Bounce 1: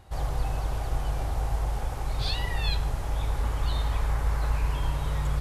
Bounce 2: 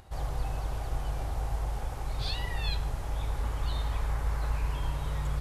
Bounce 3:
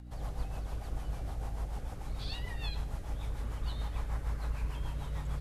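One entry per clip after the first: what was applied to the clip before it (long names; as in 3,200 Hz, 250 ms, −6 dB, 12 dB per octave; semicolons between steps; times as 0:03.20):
upward compression, threshold −45 dBFS; level −4 dB
mains hum 60 Hz, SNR 12 dB; rotating-speaker cabinet horn 6.7 Hz; level −4 dB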